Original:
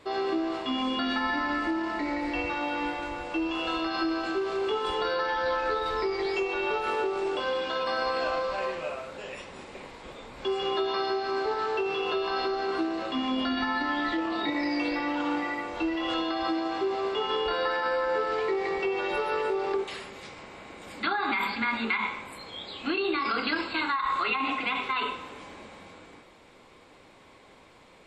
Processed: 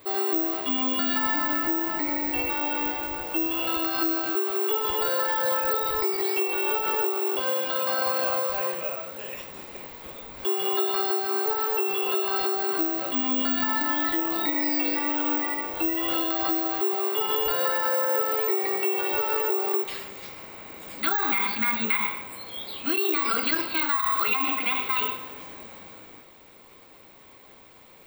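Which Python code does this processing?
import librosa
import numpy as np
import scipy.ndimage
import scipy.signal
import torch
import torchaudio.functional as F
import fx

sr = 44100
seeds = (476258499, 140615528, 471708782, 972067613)

y = fx.high_shelf(x, sr, hz=5500.0, db=5.5)
y = (np.kron(y[::2], np.eye(2)[0]) * 2)[:len(y)]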